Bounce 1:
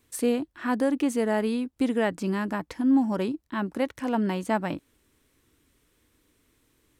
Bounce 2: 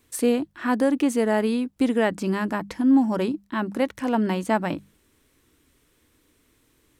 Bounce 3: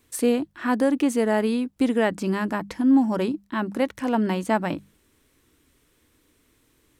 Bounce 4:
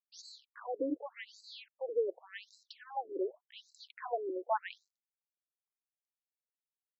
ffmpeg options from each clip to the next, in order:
ffmpeg -i in.wav -af "bandreject=frequency=50:width_type=h:width=6,bandreject=frequency=100:width_type=h:width=6,bandreject=frequency=150:width_type=h:width=6,bandreject=frequency=200:width_type=h:width=6,volume=3.5dB" out.wav
ffmpeg -i in.wav -af anull out.wav
ffmpeg -i in.wav -af "acrusher=bits=7:mix=0:aa=0.5,aeval=exprs='0.335*(cos(1*acos(clip(val(0)/0.335,-1,1)))-cos(1*PI/2))+0.015*(cos(3*acos(clip(val(0)/0.335,-1,1)))-cos(3*PI/2))+0.00596*(cos(8*acos(clip(val(0)/0.335,-1,1)))-cos(8*PI/2))':channel_layout=same,afftfilt=real='re*between(b*sr/1024,370*pow(5600/370,0.5+0.5*sin(2*PI*0.87*pts/sr))/1.41,370*pow(5600/370,0.5+0.5*sin(2*PI*0.87*pts/sr))*1.41)':imag='im*between(b*sr/1024,370*pow(5600/370,0.5+0.5*sin(2*PI*0.87*pts/sr))/1.41,370*pow(5600/370,0.5+0.5*sin(2*PI*0.87*pts/sr))*1.41)':win_size=1024:overlap=0.75,volume=-5.5dB" out.wav

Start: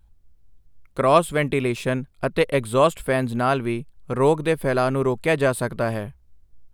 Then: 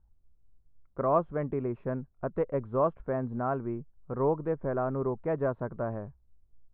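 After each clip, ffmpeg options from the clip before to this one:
ffmpeg -i in.wav -af "lowpass=frequency=1300:width=0.5412,lowpass=frequency=1300:width=1.3066,volume=-9dB" out.wav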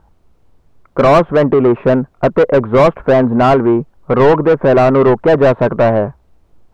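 ffmpeg -i in.wav -filter_complex "[0:a]acontrast=90,asplit=2[link_01][link_02];[link_02]highpass=frequency=720:poles=1,volume=26dB,asoftclip=type=tanh:threshold=-7dB[link_03];[link_01][link_03]amix=inputs=2:normalize=0,lowpass=frequency=1300:poles=1,volume=-6dB,volume=6.5dB" out.wav

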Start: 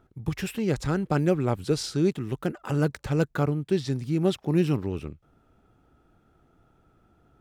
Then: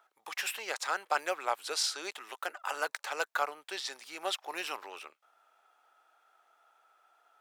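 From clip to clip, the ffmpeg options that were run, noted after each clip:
ffmpeg -i in.wav -af "highpass=frequency=740:width=0.5412,highpass=frequency=740:width=1.3066,volume=3dB" out.wav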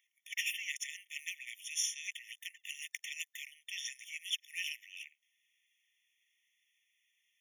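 ffmpeg -i in.wav -filter_complex "[0:a]acrossover=split=1800[link_01][link_02];[link_01]acompressor=threshold=-44dB:ratio=6[link_03];[link_03][link_02]amix=inputs=2:normalize=0,afftfilt=real='re*eq(mod(floor(b*sr/1024/1800),2),1)':imag='im*eq(mod(floor(b*sr/1024/1800),2),1)':win_size=1024:overlap=0.75,volume=2dB" out.wav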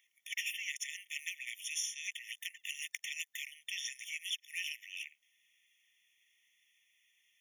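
ffmpeg -i in.wav -af "acompressor=threshold=-43dB:ratio=2.5,volume=5dB" out.wav

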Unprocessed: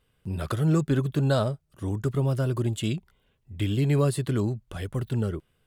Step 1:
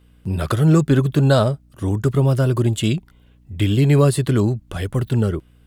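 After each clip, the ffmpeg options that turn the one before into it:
ffmpeg -i in.wav -af "aeval=exprs='val(0)+0.00112*(sin(2*PI*60*n/s)+sin(2*PI*2*60*n/s)/2+sin(2*PI*3*60*n/s)/3+sin(2*PI*4*60*n/s)/4+sin(2*PI*5*60*n/s)/5)':channel_layout=same,volume=8.5dB" out.wav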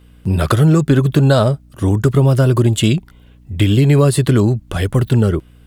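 ffmpeg -i in.wav -af "acompressor=threshold=-15dB:ratio=6,volume=7dB" out.wav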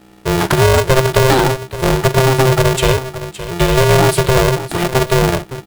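ffmpeg -i in.wav -af "aecho=1:1:55|566:0.126|0.224,aeval=exprs='val(0)*sgn(sin(2*PI*260*n/s))':channel_layout=same" out.wav

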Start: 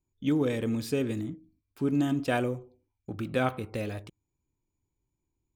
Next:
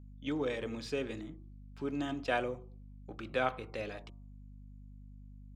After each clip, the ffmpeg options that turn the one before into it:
ffmpeg -i in.wav -filter_complex "[0:a]acrossover=split=410 6600:gain=0.251 1 0.0708[link_01][link_02][link_03];[link_01][link_02][link_03]amix=inputs=3:normalize=0,bandreject=frequency=117.3:width_type=h:width=4,bandreject=frequency=234.6:width_type=h:width=4,bandreject=frequency=351.9:width_type=h:width=4,bandreject=frequency=469.2:width_type=h:width=4,bandreject=frequency=586.5:width_type=h:width=4,bandreject=frequency=703.8:width_type=h:width=4,bandreject=frequency=821.1:width_type=h:width=4,bandreject=frequency=938.4:width_type=h:width=4,bandreject=frequency=1055.7:width_type=h:width=4,bandreject=frequency=1173:width_type=h:width=4,aeval=exprs='val(0)+0.00398*(sin(2*PI*50*n/s)+sin(2*PI*2*50*n/s)/2+sin(2*PI*3*50*n/s)/3+sin(2*PI*4*50*n/s)/4+sin(2*PI*5*50*n/s)/5)':channel_layout=same,volume=-2dB" out.wav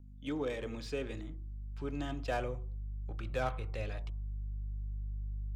ffmpeg -i in.wav -filter_complex "[0:a]asubboost=boost=9:cutoff=91,acrossover=split=550|950[link_01][link_02][link_03];[link_03]asoftclip=type=tanh:threshold=-38dB[link_04];[link_01][link_02][link_04]amix=inputs=3:normalize=0,volume=-1dB" out.wav

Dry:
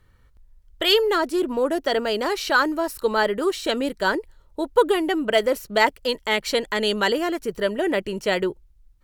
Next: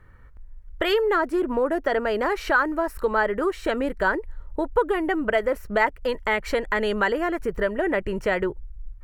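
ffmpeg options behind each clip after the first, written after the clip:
ffmpeg -i in.wav -af "highshelf=frequency=2600:width_type=q:width=1.5:gain=-11,acompressor=threshold=-30dB:ratio=2,asubboost=boost=4:cutoff=100,volume=6dB" out.wav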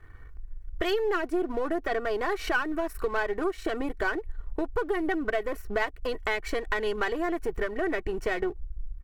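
ffmpeg -i in.wav -af "aeval=exprs='if(lt(val(0),0),0.447*val(0),val(0))':channel_layout=same,aecho=1:1:2.7:0.56,acompressor=threshold=-31dB:ratio=2,volume=2dB" out.wav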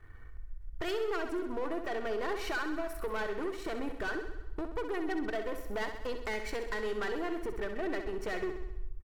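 ffmpeg -i in.wav -filter_complex "[0:a]asoftclip=type=tanh:threshold=-26.5dB,asplit=2[link_01][link_02];[link_02]aecho=0:1:65|130|195|260|325|390|455|520:0.376|0.226|0.135|0.0812|0.0487|0.0292|0.0175|0.0105[link_03];[link_01][link_03]amix=inputs=2:normalize=0,volume=-3.5dB" out.wav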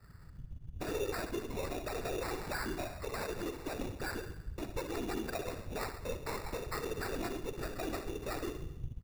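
ffmpeg -i in.wav -filter_complex "[0:a]afftfilt=real='hypot(re,im)*cos(2*PI*random(0))':imag='hypot(re,im)*sin(2*PI*random(1))':win_size=512:overlap=0.75,acrossover=split=210[link_01][link_02];[link_02]acrusher=samples=14:mix=1:aa=0.000001[link_03];[link_01][link_03]amix=inputs=2:normalize=0,volume=2.5dB" out.wav

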